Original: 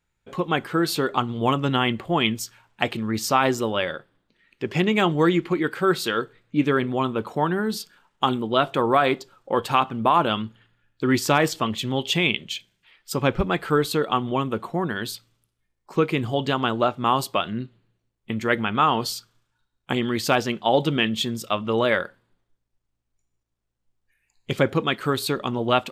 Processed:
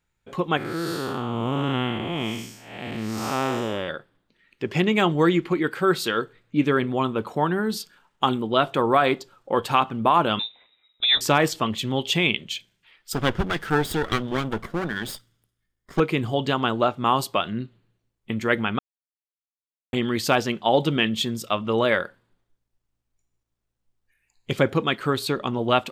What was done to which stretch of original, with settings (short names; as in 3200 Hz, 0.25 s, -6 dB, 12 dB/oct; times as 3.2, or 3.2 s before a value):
0.57–3.89 time blur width 0.272 s
10.39–11.21 inverted band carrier 3800 Hz
13.13–16 minimum comb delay 0.58 ms
18.79–19.93 mute
24.97–25.59 high shelf 7700 Hz -6 dB